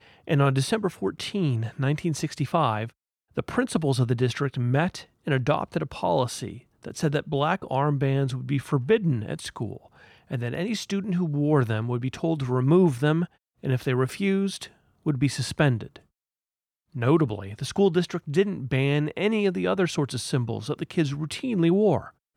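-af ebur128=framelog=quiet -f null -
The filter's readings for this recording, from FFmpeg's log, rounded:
Integrated loudness:
  I:         -25.7 LUFS
  Threshold: -36.0 LUFS
Loudness range:
  LRA:         2.9 LU
  Threshold: -46.2 LUFS
  LRA low:   -27.6 LUFS
  LRA high:  -24.6 LUFS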